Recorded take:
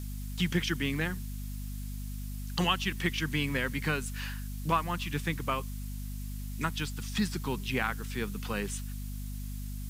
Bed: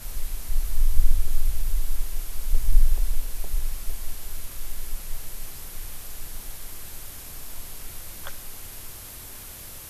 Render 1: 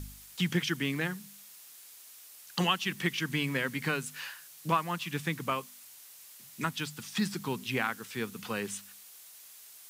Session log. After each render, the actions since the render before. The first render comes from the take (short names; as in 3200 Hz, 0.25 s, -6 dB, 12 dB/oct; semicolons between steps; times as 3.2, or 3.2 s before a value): de-hum 50 Hz, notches 5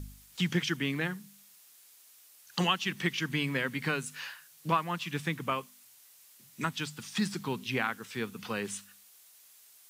noise print and reduce 6 dB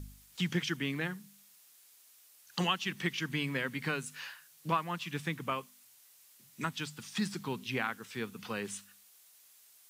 gain -3 dB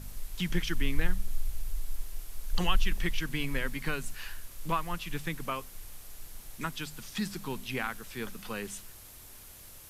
add bed -10 dB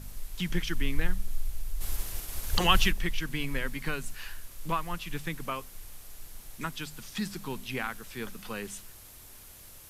1.8–2.9 spectral limiter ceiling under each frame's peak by 14 dB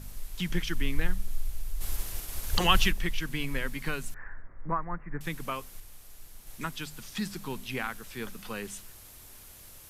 4.14–5.21 steep low-pass 2000 Hz 72 dB/oct; 5.8–6.47 gain -3.5 dB